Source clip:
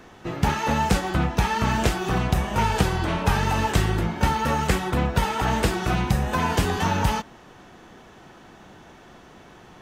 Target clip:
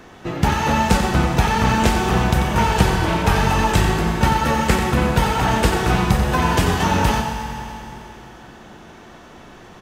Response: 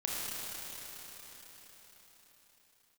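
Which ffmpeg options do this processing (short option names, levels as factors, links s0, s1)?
-filter_complex "[0:a]aecho=1:1:90:0.376,asplit=2[s0][s1];[1:a]atrim=start_sample=2205,asetrate=74970,aresample=44100,adelay=126[s2];[s1][s2]afir=irnorm=-1:irlink=0,volume=0.422[s3];[s0][s3]amix=inputs=2:normalize=0,volume=1.58"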